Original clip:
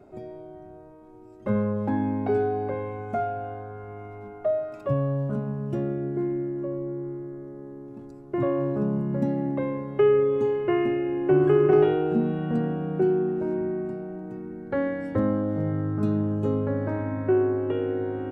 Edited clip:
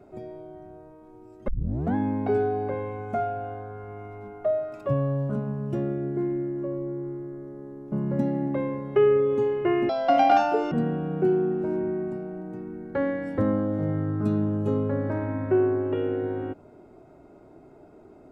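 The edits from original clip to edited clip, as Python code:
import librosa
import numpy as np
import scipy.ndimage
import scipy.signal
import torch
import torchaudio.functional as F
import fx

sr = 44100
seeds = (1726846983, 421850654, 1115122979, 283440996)

y = fx.edit(x, sr, fx.tape_start(start_s=1.48, length_s=0.47),
    fx.cut(start_s=7.92, length_s=1.03),
    fx.speed_span(start_s=10.92, length_s=1.57, speed=1.9), tone=tone)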